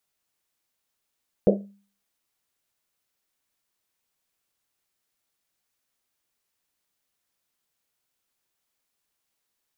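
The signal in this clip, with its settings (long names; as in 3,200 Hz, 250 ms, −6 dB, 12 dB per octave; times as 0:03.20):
drum after Risset, pitch 200 Hz, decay 0.44 s, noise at 490 Hz, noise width 280 Hz, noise 50%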